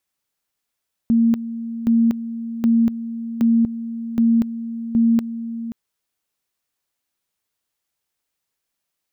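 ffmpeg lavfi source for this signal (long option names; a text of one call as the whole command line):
ffmpeg -f lavfi -i "aevalsrc='pow(10,(-12-13*gte(mod(t,0.77),0.24))/20)*sin(2*PI*230*t)':duration=4.62:sample_rate=44100" out.wav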